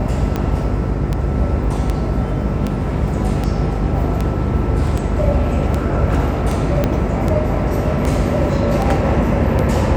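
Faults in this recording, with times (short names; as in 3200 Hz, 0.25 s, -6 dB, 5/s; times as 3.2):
buzz 50 Hz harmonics 9 -22 dBFS
tick 78 rpm -8 dBFS
4.87 gap 2.5 ms
6.84 pop -4 dBFS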